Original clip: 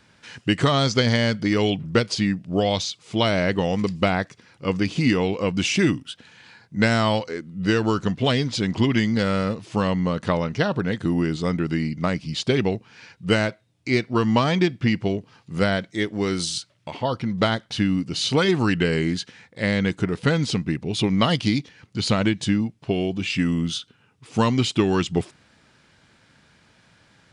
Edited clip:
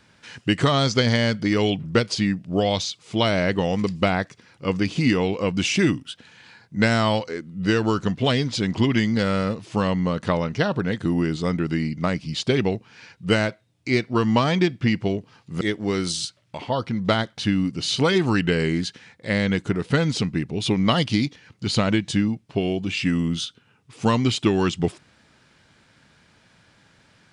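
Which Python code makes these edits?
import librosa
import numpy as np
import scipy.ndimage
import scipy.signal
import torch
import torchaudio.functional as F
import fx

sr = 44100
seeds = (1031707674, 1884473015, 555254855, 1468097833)

y = fx.edit(x, sr, fx.cut(start_s=15.61, length_s=0.33), tone=tone)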